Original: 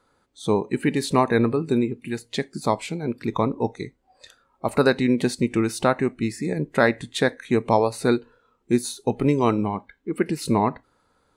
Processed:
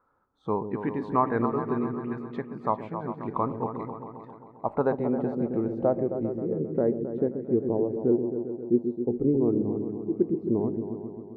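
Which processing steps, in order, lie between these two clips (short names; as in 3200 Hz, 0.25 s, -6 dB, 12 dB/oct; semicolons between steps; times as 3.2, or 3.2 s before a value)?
repeats that get brighter 0.133 s, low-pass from 400 Hz, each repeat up 2 oct, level -6 dB; low-pass sweep 1200 Hz -> 380 Hz, 3.96–7.2; gain -8.5 dB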